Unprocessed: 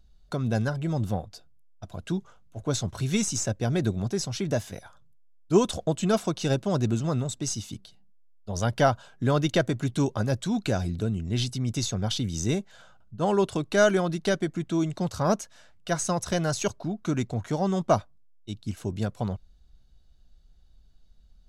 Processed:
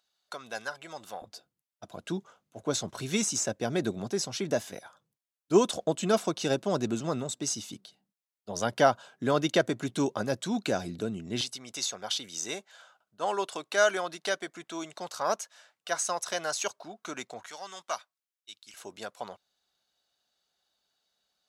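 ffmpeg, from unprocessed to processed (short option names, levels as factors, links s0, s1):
-af "asetnsamples=n=441:p=0,asendcmd='1.22 highpass f 250;11.41 highpass f 670;17.46 highpass f 1500;18.74 highpass f 680',highpass=890"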